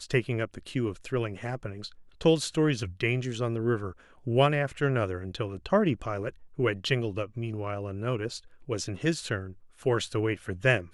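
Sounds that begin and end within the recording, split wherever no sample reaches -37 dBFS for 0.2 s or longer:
2.21–3.91 s
4.27–6.30 s
6.59–8.38 s
8.69–9.52 s

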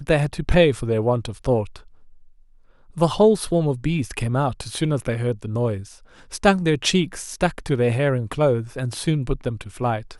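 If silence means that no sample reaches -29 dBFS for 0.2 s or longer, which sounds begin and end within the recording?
2.97–5.82 s

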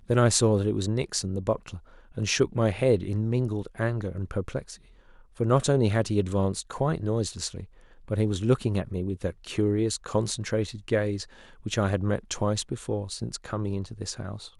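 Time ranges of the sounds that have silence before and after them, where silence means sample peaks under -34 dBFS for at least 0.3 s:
2.17–4.75 s
5.40–7.64 s
8.08–11.23 s

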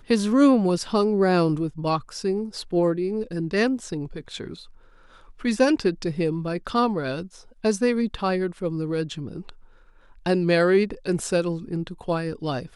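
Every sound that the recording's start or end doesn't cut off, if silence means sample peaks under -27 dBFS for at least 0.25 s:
5.45–7.22 s
7.64–9.49 s

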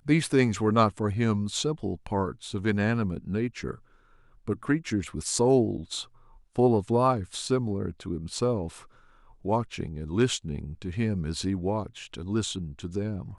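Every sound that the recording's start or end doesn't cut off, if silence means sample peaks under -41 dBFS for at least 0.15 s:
4.48–6.04 s
6.56–8.82 s

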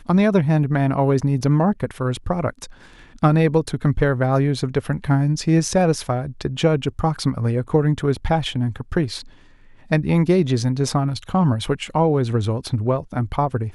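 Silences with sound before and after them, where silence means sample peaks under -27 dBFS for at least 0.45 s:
2.65–3.23 s
9.21–9.91 s

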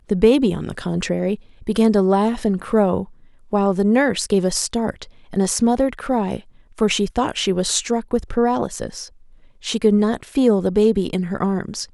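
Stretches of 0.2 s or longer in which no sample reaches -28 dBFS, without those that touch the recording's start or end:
1.35–1.67 s
3.04–3.53 s
5.04–5.33 s
6.39–6.78 s
9.05–9.64 s

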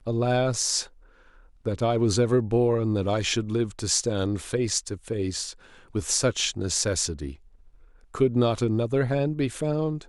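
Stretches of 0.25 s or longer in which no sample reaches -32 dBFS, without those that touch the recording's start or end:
0.83–1.66 s
5.51–5.95 s
7.32–8.15 s

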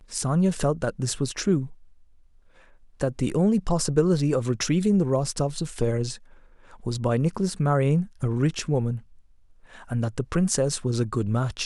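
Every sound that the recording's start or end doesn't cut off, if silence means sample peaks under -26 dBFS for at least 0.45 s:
3.01–6.12 s
6.87–8.96 s

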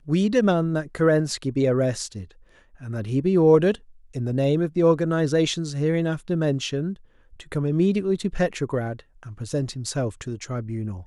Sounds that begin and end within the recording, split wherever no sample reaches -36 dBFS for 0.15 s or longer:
2.81–3.76 s
4.15–6.94 s
7.40–9.00 s

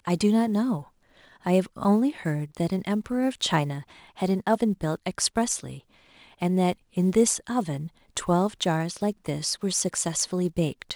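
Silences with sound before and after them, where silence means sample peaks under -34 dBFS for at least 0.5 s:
0.81–1.46 s
5.77–6.42 s

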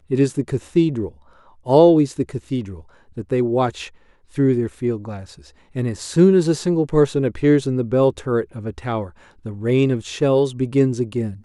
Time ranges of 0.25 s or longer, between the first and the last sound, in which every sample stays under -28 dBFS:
1.09–1.67 s
2.75–3.17 s
3.87–4.38 s
5.22–5.76 s
9.07–9.46 s

